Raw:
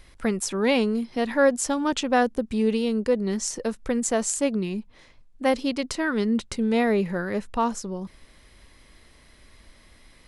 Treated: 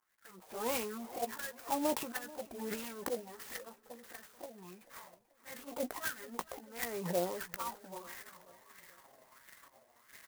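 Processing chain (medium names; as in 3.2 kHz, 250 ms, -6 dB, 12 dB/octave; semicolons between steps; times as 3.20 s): low-pass 6.7 kHz 24 dB/octave; slow attack 438 ms; reverse; upward compressor, threshold -47 dBFS; reverse; transient shaper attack -6 dB, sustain +12 dB; wah-wah 1.5 Hz 660–1800 Hz, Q 4; touch-sensitive flanger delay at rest 9.4 ms, full sweep at -37.5 dBFS; doubling 17 ms -9.5 dB; feedback delay 437 ms, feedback 52%, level -20 dB; sampling jitter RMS 0.078 ms; trim +7 dB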